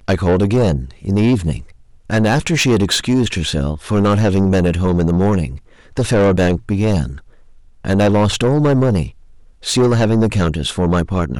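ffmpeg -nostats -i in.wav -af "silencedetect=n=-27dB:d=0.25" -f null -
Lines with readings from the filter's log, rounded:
silence_start: 1.61
silence_end: 2.10 | silence_duration: 0.48
silence_start: 5.57
silence_end: 5.97 | silence_duration: 0.40
silence_start: 7.18
silence_end: 7.85 | silence_duration: 0.66
silence_start: 9.09
silence_end: 9.64 | silence_duration: 0.55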